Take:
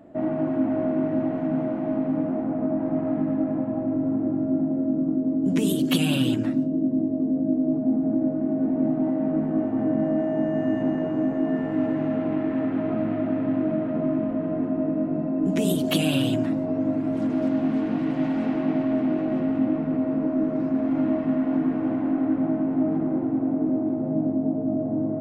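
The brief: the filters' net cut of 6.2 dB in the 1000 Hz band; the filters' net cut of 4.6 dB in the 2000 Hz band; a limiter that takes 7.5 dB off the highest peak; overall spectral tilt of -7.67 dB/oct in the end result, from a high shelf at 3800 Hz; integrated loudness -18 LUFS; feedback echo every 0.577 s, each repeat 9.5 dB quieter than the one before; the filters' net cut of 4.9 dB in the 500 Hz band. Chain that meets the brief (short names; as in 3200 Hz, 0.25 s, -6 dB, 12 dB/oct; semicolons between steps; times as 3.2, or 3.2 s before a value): bell 500 Hz -4.5 dB; bell 1000 Hz -6 dB; bell 2000 Hz -3.5 dB; high shelf 3800 Hz -3.5 dB; limiter -18.5 dBFS; feedback echo 0.577 s, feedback 33%, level -9.5 dB; gain +8.5 dB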